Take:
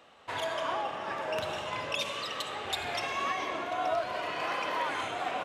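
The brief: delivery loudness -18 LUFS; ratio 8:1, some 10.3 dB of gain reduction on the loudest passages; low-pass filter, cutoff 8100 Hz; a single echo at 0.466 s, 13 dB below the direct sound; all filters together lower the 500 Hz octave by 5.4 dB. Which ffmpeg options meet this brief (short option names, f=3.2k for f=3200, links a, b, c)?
-af "lowpass=8.1k,equalizer=f=500:t=o:g=-8,acompressor=threshold=-40dB:ratio=8,aecho=1:1:466:0.224,volume=24.5dB"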